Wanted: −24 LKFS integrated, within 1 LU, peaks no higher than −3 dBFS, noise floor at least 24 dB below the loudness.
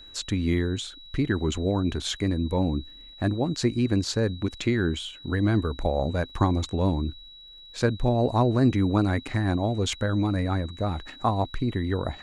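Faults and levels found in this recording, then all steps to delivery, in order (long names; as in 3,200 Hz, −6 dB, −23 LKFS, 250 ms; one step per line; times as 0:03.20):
crackle rate 34 per second; interfering tone 3,900 Hz; level of the tone −45 dBFS; integrated loudness −26.0 LKFS; sample peak −10.5 dBFS; target loudness −24.0 LKFS
→ click removal
notch filter 3,900 Hz, Q 30
level +2 dB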